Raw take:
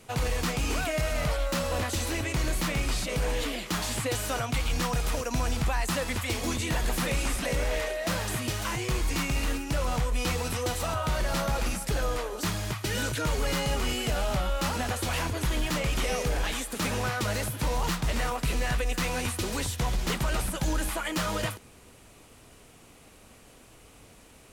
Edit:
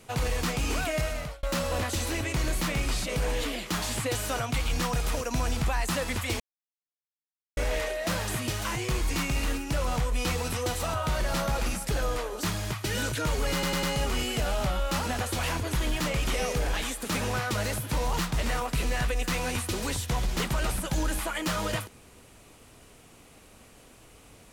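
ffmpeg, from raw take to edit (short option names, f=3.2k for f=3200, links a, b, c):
-filter_complex "[0:a]asplit=7[a][b][c][d][e][f][g];[a]atrim=end=1.43,asetpts=PTS-STARTPTS,afade=t=out:st=1:d=0.43[h];[b]atrim=start=1.43:end=6.4,asetpts=PTS-STARTPTS,afade=t=in:d=0.004:c=hsin,afade=t=out:st=4.966:d=0.004:c=hsin[i];[c]atrim=start=6.4:end=7.57,asetpts=PTS-STARTPTS,volume=0[j];[d]atrim=start=7.57:end=13.632,asetpts=PTS-STARTPTS,afade=t=in:d=0.004:c=hsin[k];[e]atrim=start=13.528:end=13.632[l];[f]atrim=start=13.528:end=13.632[m];[g]atrim=start=13.528[n];[h][i][j][k]concat=n=4:v=0:a=1[o];[o][l]acrossfade=d=0.004:c1=hsin:c2=hsin[p];[p][m]acrossfade=d=0.004:c1=hsin:c2=hsin[q];[q][n]acrossfade=d=0.004:c1=hsin:c2=hsin"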